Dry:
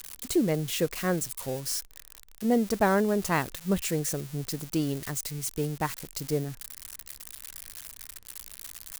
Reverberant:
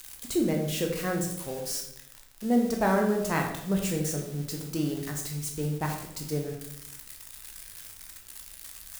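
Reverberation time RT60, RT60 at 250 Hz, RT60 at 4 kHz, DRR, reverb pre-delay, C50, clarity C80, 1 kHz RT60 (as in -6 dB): 0.80 s, 1.0 s, 0.60 s, 1.0 dB, 13 ms, 5.5 dB, 8.0 dB, 0.75 s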